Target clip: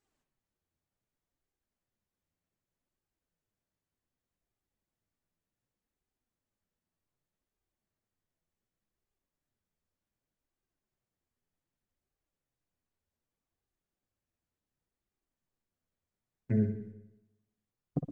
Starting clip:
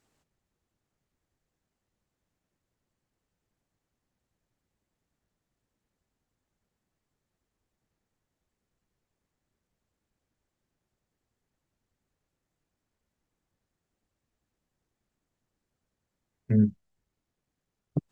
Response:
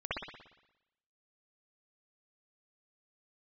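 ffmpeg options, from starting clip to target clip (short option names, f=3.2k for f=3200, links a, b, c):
-filter_complex "[0:a]agate=range=-7dB:threshold=-53dB:ratio=16:detection=peak,flanger=delay=2.4:depth=9.9:regen=44:speed=0.66:shape=sinusoidal,asplit=2[a][b];[1:a]atrim=start_sample=2205[c];[b][c]afir=irnorm=-1:irlink=0,volume=-9.5dB[d];[a][d]amix=inputs=2:normalize=0"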